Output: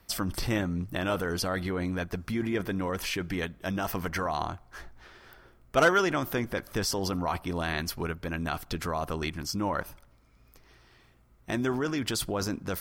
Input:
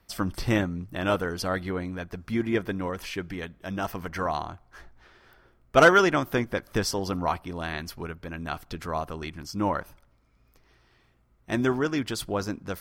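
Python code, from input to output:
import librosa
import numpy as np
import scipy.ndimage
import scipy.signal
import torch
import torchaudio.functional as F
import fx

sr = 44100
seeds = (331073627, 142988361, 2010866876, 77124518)

p1 = fx.high_shelf(x, sr, hz=5900.0, db=5.0)
p2 = fx.over_compress(p1, sr, threshold_db=-33.0, ratio=-1.0)
p3 = p1 + (p2 * 10.0 ** (0.5 / 20.0))
y = p3 * 10.0 ** (-6.0 / 20.0)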